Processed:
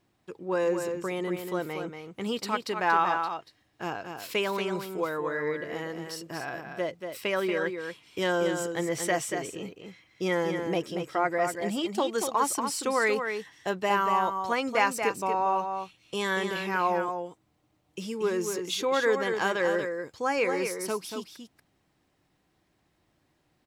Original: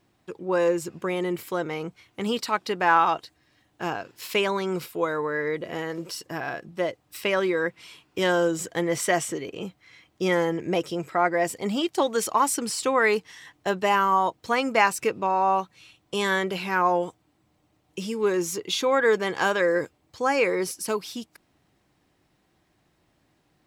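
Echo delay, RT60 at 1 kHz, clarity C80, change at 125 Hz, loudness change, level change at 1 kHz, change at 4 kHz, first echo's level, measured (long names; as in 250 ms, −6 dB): 234 ms, no reverb audible, no reverb audible, −3.5 dB, −4.0 dB, −3.5 dB, −3.5 dB, −6.5 dB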